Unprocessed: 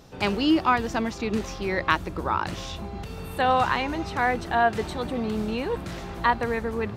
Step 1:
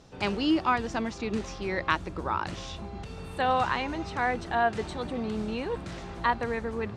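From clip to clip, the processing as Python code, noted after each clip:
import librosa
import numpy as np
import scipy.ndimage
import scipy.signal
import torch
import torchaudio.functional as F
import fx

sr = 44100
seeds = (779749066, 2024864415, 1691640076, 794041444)

y = scipy.signal.sosfilt(scipy.signal.butter(4, 9300.0, 'lowpass', fs=sr, output='sos'), x)
y = y * librosa.db_to_amplitude(-4.0)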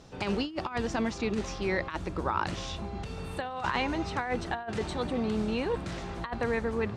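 y = fx.over_compress(x, sr, threshold_db=-29.0, ratio=-0.5)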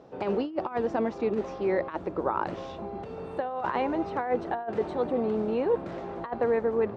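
y = fx.bandpass_q(x, sr, hz=510.0, q=1.1)
y = y * librosa.db_to_amplitude(6.5)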